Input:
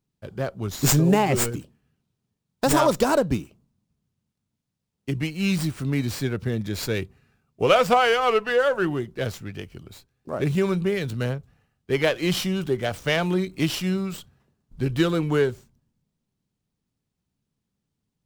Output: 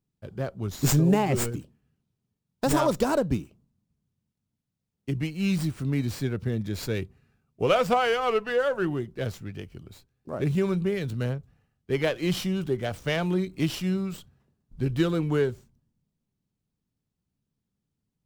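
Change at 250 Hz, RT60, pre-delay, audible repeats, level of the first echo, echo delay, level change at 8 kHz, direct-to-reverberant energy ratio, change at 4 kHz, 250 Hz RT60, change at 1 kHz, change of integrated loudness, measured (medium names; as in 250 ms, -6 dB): -2.0 dB, no reverb, no reverb, no echo, no echo, no echo, -6.0 dB, no reverb, -6.0 dB, no reverb, -5.0 dB, -3.5 dB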